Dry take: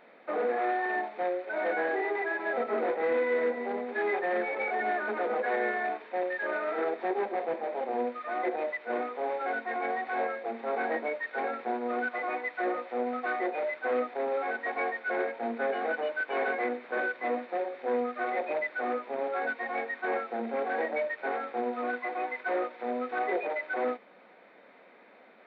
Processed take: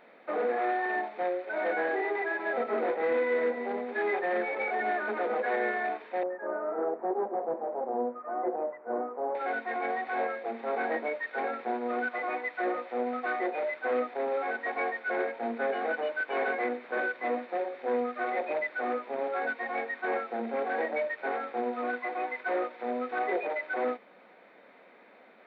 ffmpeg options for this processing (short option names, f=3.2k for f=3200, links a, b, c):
-filter_complex "[0:a]asettb=1/sr,asplit=3[a][b][c];[a]atrim=end=6.234[d];[b]atrim=start=6.23:end=9.35,asetpts=PTS-STARTPTS,afade=t=in:d=0.004:c=qsin,afade=t=out:st=3.116:d=0.004:c=qsin,lowpass=f=1.2k:w=0.5412,lowpass=f=1.2k:w=1.3066[e];[c]atrim=start=9.346[f];[d][e]acrossfade=d=0.004:c1=hsin:c2=qsin[g];[g][f]acrossfade=d=0.004:c1=qsin:c2=hsin"